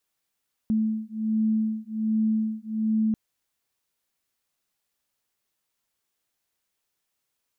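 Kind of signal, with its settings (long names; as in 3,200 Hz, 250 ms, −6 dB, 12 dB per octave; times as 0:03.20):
two tones that beat 218 Hz, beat 1.3 Hz, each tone −25.5 dBFS 2.44 s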